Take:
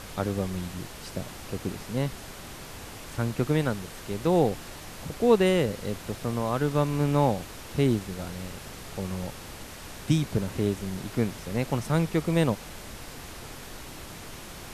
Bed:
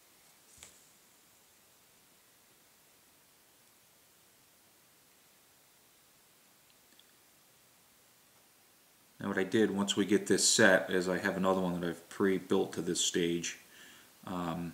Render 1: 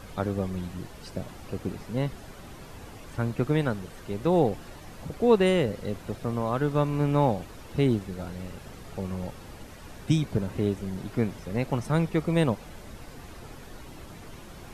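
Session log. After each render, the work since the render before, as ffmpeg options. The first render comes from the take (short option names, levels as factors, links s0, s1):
-af "afftdn=nr=9:nf=-43"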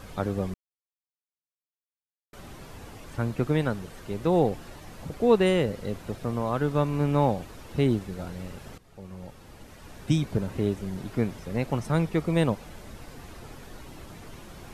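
-filter_complex "[0:a]asplit=4[s0][s1][s2][s3];[s0]atrim=end=0.54,asetpts=PTS-STARTPTS,afade=t=out:st=0.536:d=0.004:c=hsin[s4];[s1]atrim=start=0.54:end=2.33,asetpts=PTS-STARTPTS,volume=0[s5];[s2]atrim=start=2.33:end=8.78,asetpts=PTS-STARTPTS,afade=t=in:d=0.004:c=hsin,afade=t=out:st=6.446:d=0.004:c=hsin:silence=0.149624[s6];[s3]atrim=start=8.78,asetpts=PTS-STARTPTS,afade=t=in:d=1.4:silence=0.149624[s7];[s4][s5][s6][s7]concat=n=4:v=0:a=1"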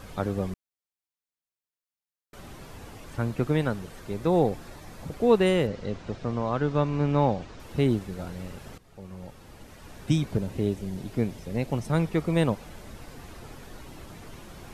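-filter_complex "[0:a]asettb=1/sr,asplit=3[s0][s1][s2];[s0]atrim=end=4.014[s3];[s1]atrim=start=4.01:end=5.07,asetpts=PTS-STARTPTS,afade=t=in:d=0.004:c=qsin,afade=t=out:st=1.056:d=0.004:c=qsin,bandreject=f=2900:w=12[s4];[s2]atrim=start=5.066[s5];[s3][s4]acrossfade=d=0.004:c1=hsin:c2=qsin[s6];[s6][s5]acrossfade=d=0.004:c1=qsin:c2=hsin,asettb=1/sr,asplit=3[s7][s8][s9];[s7]atrim=end=5.674[s10];[s8]atrim=start=5.67:end=7.6,asetpts=PTS-STARTPTS,afade=t=in:d=0.004:c=qsin,afade=t=out:st=1.926:d=0.004:c=qsin,lowpass=f=6500:w=0.5412,lowpass=f=6500:w=1.3066[s11];[s9]atrim=start=7.596[s12];[s10][s11]acrossfade=d=0.004:c1=hsin:c2=qsin[s13];[s13][s12]acrossfade=d=0.004:c1=qsin:c2=hsin,asettb=1/sr,asplit=3[s14][s15][s16];[s14]atrim=end=10.374[s17];[s15]atrim=start=10.37:end=11.93,asetpts=PTS-STARTPTS,afade=t=in:d=0.004:c=qsin,afade=t=out:st=1.556:d=0.004:c=qsin,equalizer=f=1300:t=o:w=1.1:g=-6.5[s18];[s16]atrim=start=11.926[s19];[s17][s18]acrossfade=d=0.004:c1=hsin:c2=qsin[s20];[s20][s19]acrossfade=d=0.004:c1=qsin:c2=hsin"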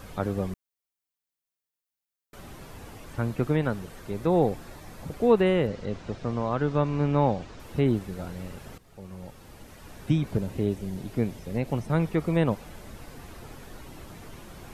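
-filter_complex "[0:a]acrossover=split=3100[s0][s1];[s1]acompressor=threshold=0.00224:ratio=4:attack=1:release=60[s2];[s0][s2]amix=inputs=2:normalize=0,highshelf=f=11000:g=6.5"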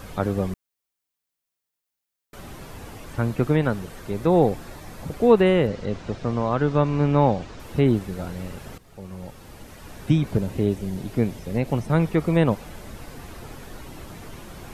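-af "volume=1.68"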